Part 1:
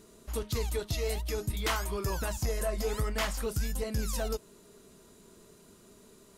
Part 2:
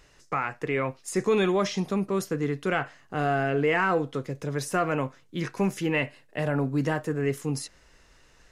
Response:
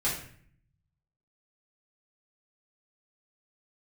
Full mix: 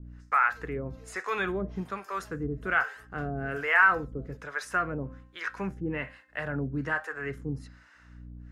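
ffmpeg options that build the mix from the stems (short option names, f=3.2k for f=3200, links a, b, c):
-filter_complex "[0:a]volume=-14.5dB[a];[1:a]equalizer=f=1.5k:t=o:w=1:g=14,bandreject=f=262.4:t=h:w=4,bandreject=f=524.8:t=h:w=4,bandreject=f=787.2:t=h:w=4,bandreject=f=1.0496k:t=h:w=4,bandreject=f=1.312k:t=h:w=4,bandreject=f=1.5744k:t=h:w=4,bandreject=f=1.8368k:t=h:w=4,bandreject=f=2.0992k:t=h:w=4,bandreject=f=2.3616k:t=h:w=4,bandreject=f=2.624k:t=h:w=4,bandreject=f=2.8864k:t=h:w=4,bandreject=f=3.1488k:t=h:w=4,bandreject=f=3.4112k:t=h:w=4,bandreject=f=3.6736k:t=h:w=4,bandreject=f=3.936k:t=h:w=4,bandreject=f=4.1984k:t=h:w=4,bandreject=f=4.4608k:t=h:w=4,bandreject=f=4.7232k:t=h:w=4,bandreject=f=4.9856k:t=h:w=4,bandreject=f=5.248k:t=h:w=4,volume=-4dB,asplit=2[b][c];[c]apad=whole_len=281285[d];[a][d]sidechaingate=range=-33dB:threshold=-46dB:ratio=16:detection=peak[e];[e][b]amix=inputs=2:normalize=0,highshelf=f=6.7k:g=-8,aeval=exprs='val(0)+0.00794*(sin(2*PI*60*n/s)+sin(2*PI*2*60*n/s)/2+sin(2*PI*3*60*n/s)/3+sin(2*PI*4*60*n/s)/4+sin(2*PI*5*60*n/s)/5)':c=same,acrossover=split=530[f][g];[f]aeval=exprs='val(0)*(1-1/2+1/2*cos(2*PI*1.2*n/s))':c=same[h];[g]aeval=exprs='val(0)*(1-1/2-1/2*cos(2*PI*1.2*n/s))':c=same[i];[h][i]amix=inputs=2:normalize=0"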